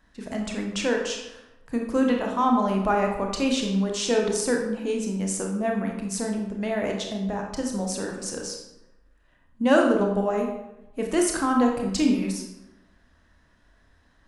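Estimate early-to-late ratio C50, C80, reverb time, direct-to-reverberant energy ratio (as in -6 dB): 4.0 dB, 7.0 dB, 0.95 s, 1.0 dB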